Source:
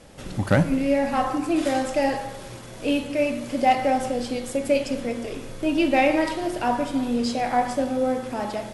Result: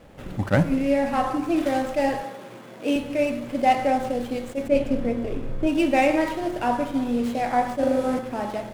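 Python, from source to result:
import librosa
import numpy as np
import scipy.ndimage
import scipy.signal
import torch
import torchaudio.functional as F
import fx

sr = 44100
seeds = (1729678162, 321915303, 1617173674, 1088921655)

y = scipy.ndimage.median_filter(x, 9, mode='constant')
y = fx.highpass(y, sr, hz=160.0, slope=24, at=(2.23, 2.96))
y = fx.tilt_eq(y, sr, slope=-2.0, at=(4.67, 5.66), fade=0.02)
y = fx.room_flutter(y, sr, wall_m=6.8, rt60_s=0.95, at=(7.79, 8.19))
y = fx.attack_slew(y, sr, db_per_s=370.0)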